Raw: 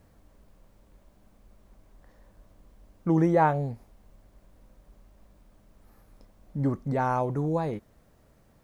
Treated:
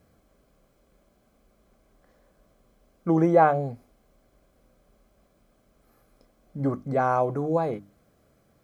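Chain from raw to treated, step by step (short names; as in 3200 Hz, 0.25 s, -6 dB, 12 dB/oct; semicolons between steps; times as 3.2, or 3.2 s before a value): dynamic EQ 800 Hz, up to +7 dB, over -39 dBFS, Q 0.74; notches 50/100/150/200/250/300 Hz; notch comb 910 Hz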